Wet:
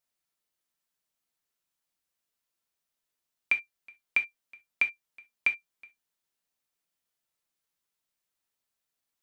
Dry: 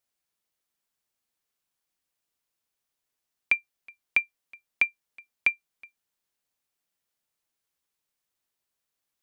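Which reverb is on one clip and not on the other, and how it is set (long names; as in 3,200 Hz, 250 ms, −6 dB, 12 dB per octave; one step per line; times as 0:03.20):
reverb whose tail is shaped and stops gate 90 ms falling, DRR 5 dB
level −3 dB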